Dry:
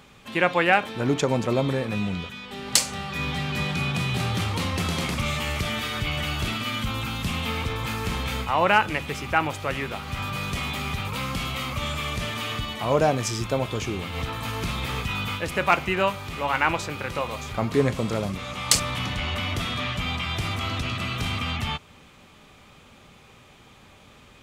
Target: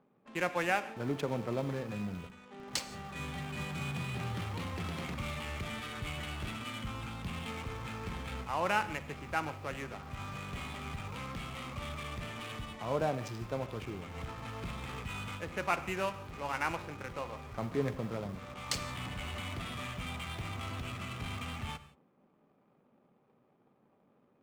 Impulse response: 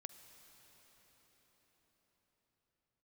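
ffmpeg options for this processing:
-filter_complex "[0:a]highshelf=f=6.1k:g=-7.5,acrossover=split=150[a][b];[a]acrusher=bits=6:mix=0:aa=0.000001[c];[b]adynamicsmooth=sensitivity=7.5:basefreq=520[d];[c][d]amix=inputs=2:normalize=0[e];[1:a]atrim=start_sample=2205,afade=t=out:st=0.23:d=0.01,atrim=end_sample=10584[f];[e][f]afir=irnorm=-1:irlink=0,volume=-5.5dB"

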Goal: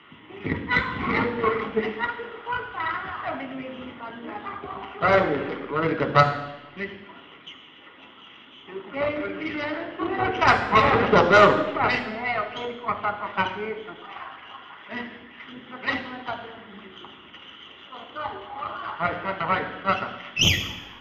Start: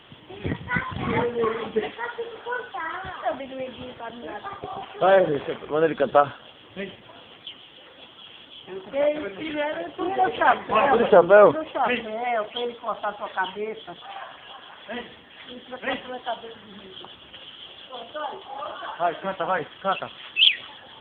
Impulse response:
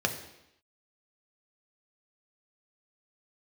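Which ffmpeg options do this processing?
-filter_complex "[0:a]equalizer=f=125:t=o:w=1:g=-9,equalizer=f=250:t=o:w=1:g=9,equalizer=f=500:t=o:w=1:g=-5,equalizer=f=1k:t=o:w=1:g=5,equalizer=f=2k:t=o:w=1:g=7,tremolo=f=110:d=0.261,aeval=exprs='1.06*(cos(1*acos(clip(val(0)/1.06,-1,1)))-cos(1*PI/2))+0.211*(cos(6*acos(clip(val(0)/1.06,-1,1)))-cos(6*PI/2))':c=same[a];[1:a]atrim=start_sample=2205,asetrate=35721,aresample=44100[b];[a][b]afir=irnorm=-1:irlink=0,volume=-12.5dB"

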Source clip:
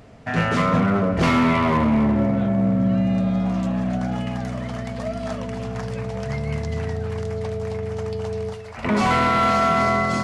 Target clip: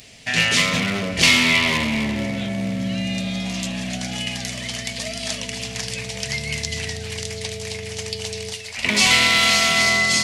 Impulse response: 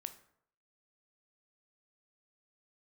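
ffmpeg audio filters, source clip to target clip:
-af "aexciter=amount=12.7:drive=3.7:freq=2k,volume=-5.5dB"

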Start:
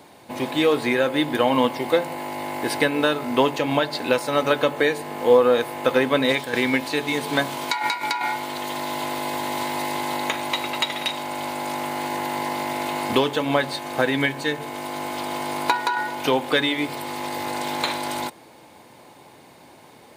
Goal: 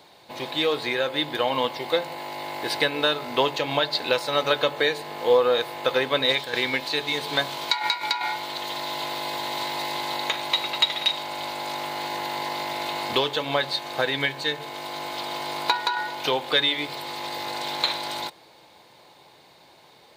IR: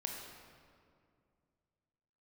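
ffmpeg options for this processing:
-af "equalizer=f=100:t=o:w=0.67:g=-5,equalizer=f=250:t=o:w=0.67:g=-9,equalizer=f=4k:t=o:w=0.67:g=9,equalizer=f=10k:t=o:w=0.67:g=-6,dynaudnorm=f=300:g=17:m=4dB,volume=-4dB"

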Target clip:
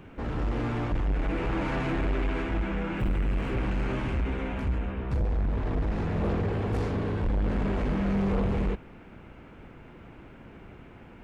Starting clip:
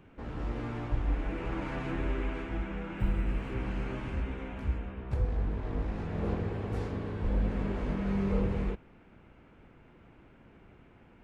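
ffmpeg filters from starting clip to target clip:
-af "asoftclip=type=tanh:threshold=-31.5dB,volume=9dB"

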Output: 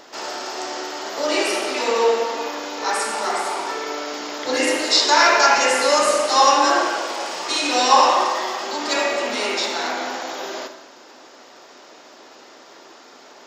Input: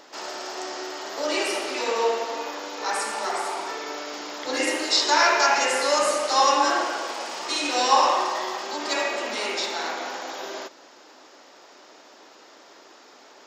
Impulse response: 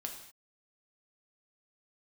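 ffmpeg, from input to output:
-filter_complex "[0:a]asplit=2[a][b];[1:a]atrim=start_sample=2205,lowshelf=f=220:g=7[c];[b][c]afir=irnorm=-1:irlink=0,volume=4dB[d];[a][d]amix=inputs=2:normalize=0,volume=-2.5dB"

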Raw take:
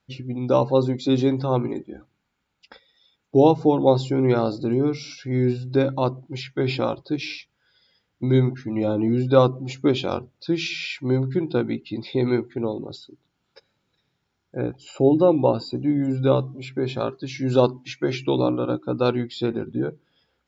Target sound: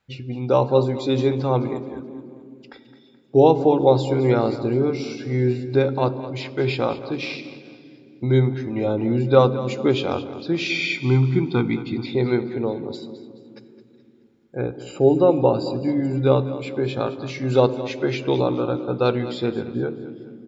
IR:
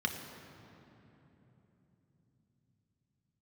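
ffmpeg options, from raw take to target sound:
-filter_complex "[0:a]asettb=1/sr,asplit=3[a][b][c];[a]atrim=end=10.694[d];[b]atrim=start=10.69:end=12.06,asetpts=PTS-STARTPTS,afade=t=in:d=0.004:c=qsin,afade=t=out:st=1.366:d=0.004:c=qsin,aecho=1:1:0.9:1,atrim=end_sample=60417[e];[c]atrim=start=12.056[f];[d][e]acrossfade=d=0.004:c1=hsin:c2=qsin[g];[g][f]acrossfade=d=0.004:c1=qsin:c2=hsin,aecho=1:1:214|428|642|856:0.188|0.0791|0.0332|0.014,asplit=2[h][i];[1:a]atrim=start_sample=2205,asetrate=74970,aresample=44100[j];[i][j]afir=irnorm=-1:irlink=0,volume=-11.5dB[k];[h][k]amix=inputs=2:normalize=0,volume=1dB"

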